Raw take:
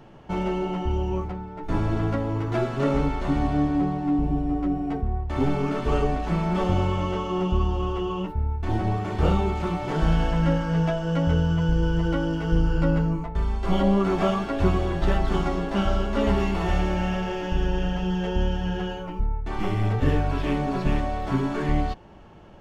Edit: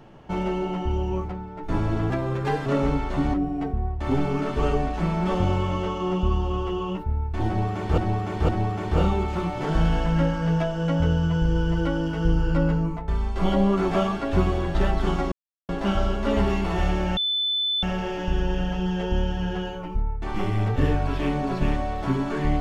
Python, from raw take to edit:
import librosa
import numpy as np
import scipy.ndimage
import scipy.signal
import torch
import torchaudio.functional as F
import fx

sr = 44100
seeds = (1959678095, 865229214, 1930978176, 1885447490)

y = fx.edit(x, sr, fx.speed_span(start_s=2.1, length_s=0.67, speed=1.2),
    fx.cut(start_s=3.45, length_s=1.18),
    fx.repeat(start_s=8.76, length_s=0.51, count=3),
    fx.insert_silence(at_s=15.59, length_s=0.37),
    fx.insert_tone(at_s=17.07, length_s=0.66, hz=3510.0, db=-21.5), tone=tone)